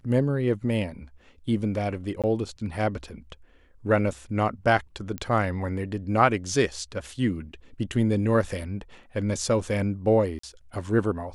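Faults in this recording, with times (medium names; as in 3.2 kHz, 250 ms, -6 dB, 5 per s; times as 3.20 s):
2.22–2.24 s: dropout 17 ms
5.18 s: pop -18 dBFS
10.39–10.43 s: dropout 44 ms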